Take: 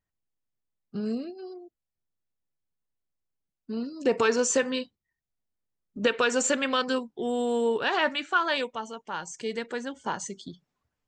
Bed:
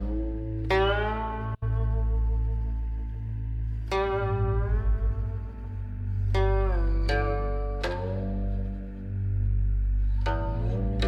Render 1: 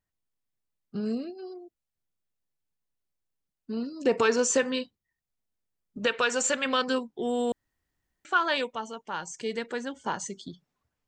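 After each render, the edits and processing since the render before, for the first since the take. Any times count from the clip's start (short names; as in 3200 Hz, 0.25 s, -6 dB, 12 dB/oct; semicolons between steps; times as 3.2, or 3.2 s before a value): 5.98–6.66 bell 300 Hz -7 dB 1.3 oct; 7.52–8.25 room tone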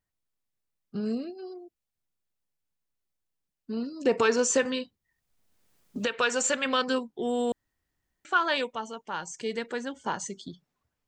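4.65–6.18 three-band squash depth 70%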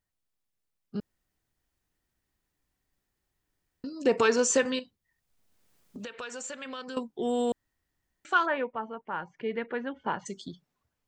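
1–3.84 room tone; 4.79–6.97 compressor 2.5:1, threshold -42 dBFS; 8.45–10.25 LPF 1900 Hz -> 3000 Hz 24 dB/oct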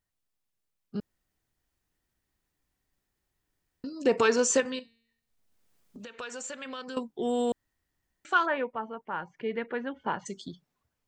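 4.6–6.19 resonator 230 Hz, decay 0.79 s, mix 40%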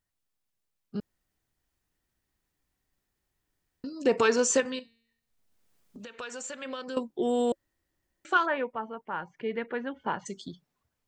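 6.62–8.37 small resonant body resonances 340/550 Hz, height 8 dB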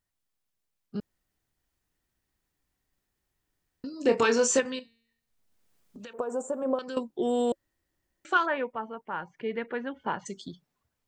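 3.91–4.59 doubler 26 ms -7.5 dB; 6.13–6.79 EQ curve 100 Hz 0 dB, 220 Hz +10 dB, 740 Hz +12 dB, 1100 Hz +5 dB, 2000 Hz -20 dB, 4400 Hz -25 dB, 7000 Hz -7 dB, 11000 Hz +11 dB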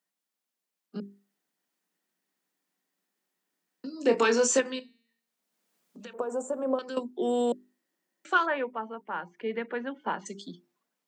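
steep high-pass 170 Hz 72 dB/oct; notches 50/100/150/200/250/300/350/400 Hz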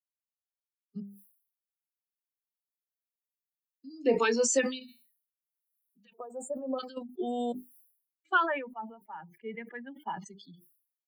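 per-bin expansion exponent 2; sustainer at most 100 dB/s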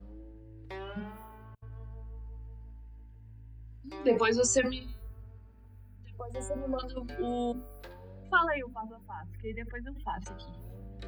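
add bed -18.5 dB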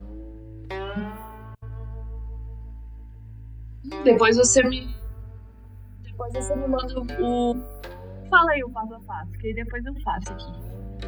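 gain +9.5 dB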